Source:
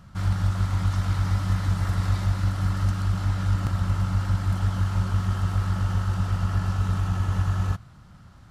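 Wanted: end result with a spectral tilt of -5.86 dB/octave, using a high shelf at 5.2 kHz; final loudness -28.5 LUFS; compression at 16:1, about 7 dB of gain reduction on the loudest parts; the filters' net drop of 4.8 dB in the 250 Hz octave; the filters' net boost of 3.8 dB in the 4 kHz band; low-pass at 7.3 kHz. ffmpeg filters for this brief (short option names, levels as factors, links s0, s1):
-af "lowpass=7300,equalizer=f=250:t=o:g=-8.5,equalizer=f=4000:t=o:g=3.5,highshelf=f=5200:g=4,acompressor=threshold=0.0501:ratio=16,volume=1.5"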